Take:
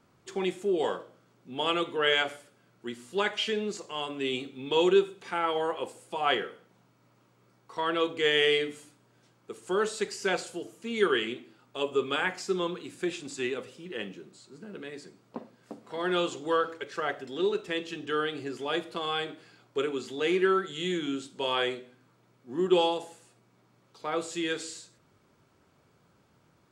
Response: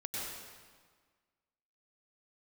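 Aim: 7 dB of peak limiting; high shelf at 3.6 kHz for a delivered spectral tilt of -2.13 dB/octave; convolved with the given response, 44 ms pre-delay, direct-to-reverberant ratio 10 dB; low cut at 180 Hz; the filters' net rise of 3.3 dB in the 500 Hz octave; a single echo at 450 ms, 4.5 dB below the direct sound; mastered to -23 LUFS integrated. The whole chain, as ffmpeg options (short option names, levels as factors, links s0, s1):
-filter_complex "[0:a]highpass=180,equalizer=f=500:t=o:g=4.5,highshelf=f=3600:g=-6,alimiter=limit=0.141:level=0:latency=1,aecho=1:1:450:0.596,asplit=2[s0][s1];[1:a]atrim=start_sample=2205,adelay=44[s2];[s1][s2]afir=irnorm=-1:irlink=0,volume=0.237[s3];[s0][s3]amix=inputs=2:normalize=0,volume=1.88"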